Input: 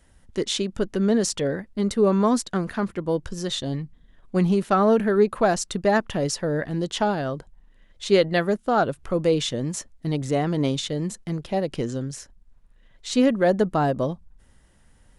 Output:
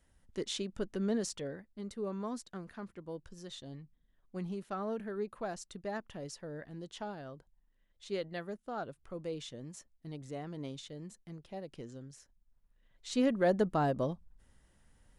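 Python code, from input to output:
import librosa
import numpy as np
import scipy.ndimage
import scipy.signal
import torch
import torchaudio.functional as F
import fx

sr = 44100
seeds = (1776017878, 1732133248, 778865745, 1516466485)

y = fx.gain(x, sr, db=fx.line((1.14, -12.0), (1.74, -19.0), (12.14, -19.0), (13.46, -8.5)))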